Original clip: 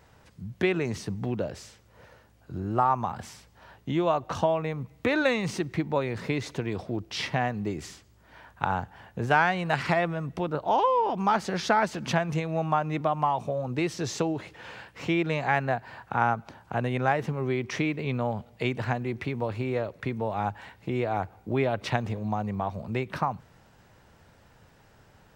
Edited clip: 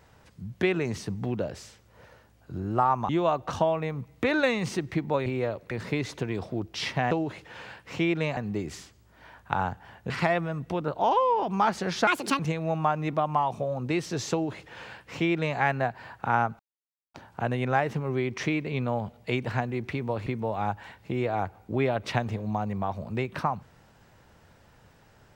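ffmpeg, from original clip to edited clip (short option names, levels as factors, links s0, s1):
-filter_complex "[0:a]asplit=11[s0][s1][s2][s3][s4][s5][s6][s7][s8][s9][s10];[s0]atrim=end=3.092[s11];[s1]atrim=start=3.908:end=6.082[s12];[s2]atrim=start=19.588:end=20.042[s13];[s3]atrim=start=6.078:end=7.482[s14];[s4]atrim=start=14.198:end=15.462[s15];[s5]atrim=start=7.478:end=9.212[s16];[s6]atrim=start=9.768:end=11.744[s17];[s7]atrim=start=11.74:end=12.27,asetpts=PTS-STARTPTS,asetrate=72324,aresample=44100[s18];[s8]atrim=start=12.266:end=16.47,asetpts=PTS-STARTPTS,afade=t=out:st=4.2:d=0.004:c=hsin,apad=pad_dur=0.55[s19];[s9]atrim=start=16.47:end=19.592,asetpts=PTS-STARTPTS,afade=t=in:d=0.004:c=hsin[s20];[s10]atrim=start=20.038[s21];[s11][s12]acrossfade=d=0.004:c1=hsin:c2=hsin[s22];[s22][s13]acrossfade=d=0.004:c1=hsin:c2=hsin[s23];[s23][s14]acrossfade=d=0.004:c1=hsin:c2=hsin[s24];[s24][s15]acrossfade=d=0.004:c1=hsin:c2=hsin[s25];[s25][s16]acrossfade=d=0.004:c1=hsin:c2=hsin[s26];[s26][s17]acrossfade=d=0.004:c1=hsin:c2=hsin[s27];[s27][s18]acrossfade=d=0.004:c1=hsin:c2=hsin[s28];[s19][s20]concat=n=2:v=0:a=1[s29];[s28][s29]acrossfade=d=0.004:c1=hsin:c2=hsin[s30];[s30][s21]acrossfade=d=0.004:c1=hsin:c2=hsin"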